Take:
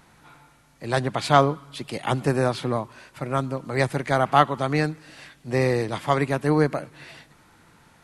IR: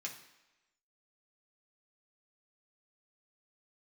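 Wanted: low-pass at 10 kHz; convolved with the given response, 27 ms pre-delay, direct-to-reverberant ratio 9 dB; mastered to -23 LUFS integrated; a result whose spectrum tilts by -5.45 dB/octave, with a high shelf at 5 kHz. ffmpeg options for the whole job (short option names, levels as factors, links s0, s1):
-filter_complex "[0:a]lowpass=10000,highshelf=f=5000:g=-4.5,asplit=2[s0][s1];[1:a]atrim=start_sample=2205,adelay=27[s2];[s1][s2]afir=irnorm=-1:irlink=0,volume=0.398[s3];[s0][s3]amix=inputs=2:normalize=0,volume=1.06"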